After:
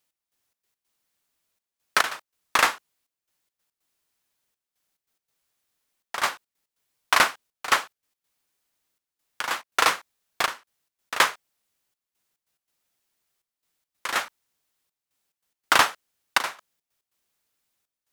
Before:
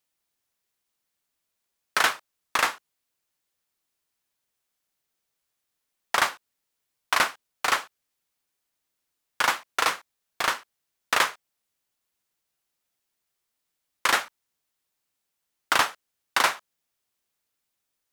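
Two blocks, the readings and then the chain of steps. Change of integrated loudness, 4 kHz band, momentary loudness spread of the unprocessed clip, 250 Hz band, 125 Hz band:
+1.5 dB, +1.0 dB, 7 LU, +1.0 dB, +1.0 dB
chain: gate pattern "x..xx.x.xxxxxx" 142 BPM −12 dB
level +3.5 dB

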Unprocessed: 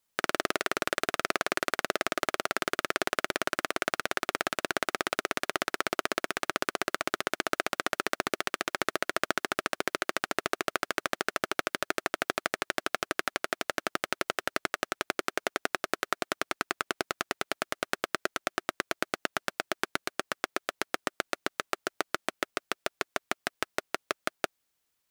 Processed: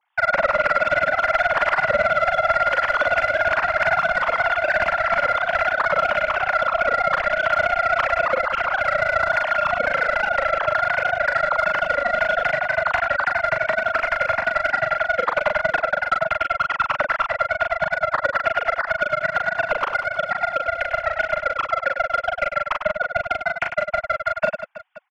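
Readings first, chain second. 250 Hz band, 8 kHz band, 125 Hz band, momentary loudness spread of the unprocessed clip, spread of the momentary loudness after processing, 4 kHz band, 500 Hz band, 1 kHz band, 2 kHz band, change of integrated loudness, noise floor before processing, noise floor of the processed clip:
−3.5 dB, below −10 dB, +11.0 dB, 4 LU, 4 LU, +0.5 dB, +12.5 dB, +13.5 dB, +12.5 dB, +11.5 dB, −79 dBFS, −37 dBFS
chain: three sine waves on the formant tracks
mid-hump overdrive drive 17 dB, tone 1,200 Hz, clips at −13 dBFS
on a send: reverse bouncing-ball delay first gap 40 ms, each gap 1.5×, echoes 5
on the sum: level +6.5 dB

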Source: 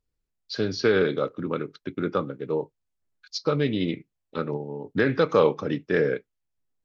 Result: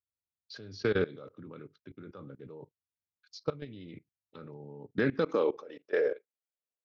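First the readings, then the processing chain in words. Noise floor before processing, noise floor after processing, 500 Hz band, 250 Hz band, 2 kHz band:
−81 dBFS, below −85 dBFS, −8.5 dB, −10.0 dB, −8.5 dB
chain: high-pass filter sweep 88 Hz → 520 Hz, 0:04.75–0:05.70
output level in coarse steps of 20 dB
level −6 dB

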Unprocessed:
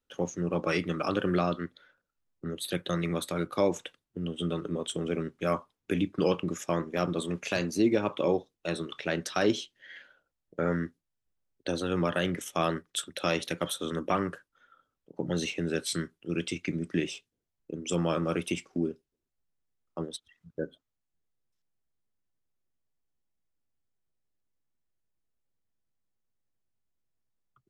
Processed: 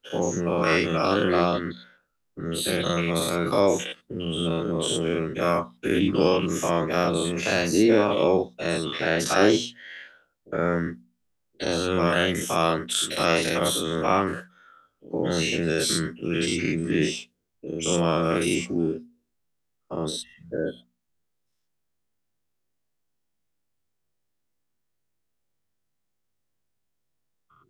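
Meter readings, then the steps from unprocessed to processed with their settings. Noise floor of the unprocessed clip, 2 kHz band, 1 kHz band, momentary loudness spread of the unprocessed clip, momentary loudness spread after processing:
−85 dBFS, +9.0 dB, +8.0 dB, 12 LU, 12 LU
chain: every bin's largest magnitude spread in time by 120 ms
mains-hum notches 60/120/180/240 Hz
level +2 dB

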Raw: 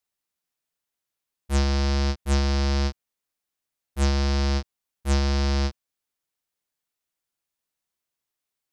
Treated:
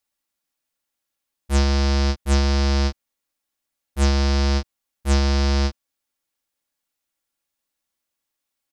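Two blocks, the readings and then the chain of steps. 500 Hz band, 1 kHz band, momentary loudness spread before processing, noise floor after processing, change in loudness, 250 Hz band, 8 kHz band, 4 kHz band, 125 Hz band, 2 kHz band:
+3.5 dB, +3.5 dB, 7 LU, −82 dBFS, +3.5 dB, +3.5 dB, +3.5 dB, +3.5 dB, can't be measured, +3.5 dB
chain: comb filter 3.6 ms, depth 42%
level +3 dB

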